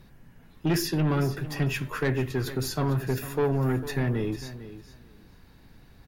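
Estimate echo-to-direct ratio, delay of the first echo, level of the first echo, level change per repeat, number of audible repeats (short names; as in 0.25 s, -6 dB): -14.0 dB, 0.451 s, -14.0 dB, -15.5 dB, 2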